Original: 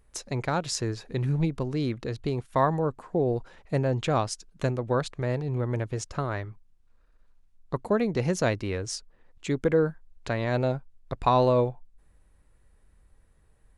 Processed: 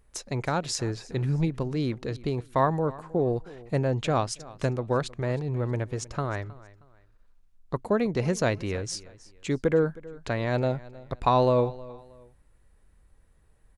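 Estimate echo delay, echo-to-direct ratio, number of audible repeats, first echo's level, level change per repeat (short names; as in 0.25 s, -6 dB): 0.315 s, -19.5 dB, 2, -20.0 dB, -10.0 dB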